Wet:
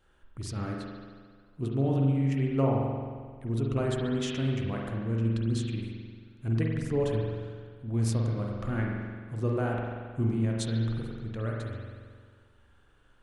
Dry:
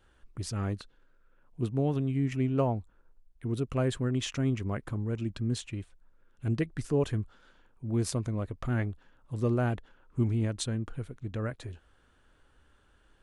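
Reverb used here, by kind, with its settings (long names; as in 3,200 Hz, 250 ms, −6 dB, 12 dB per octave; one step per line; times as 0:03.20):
spring reverb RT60 1.7 s, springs 44 ms, chirp 30 ms, DRR −1.5 dB
level −2.5 dB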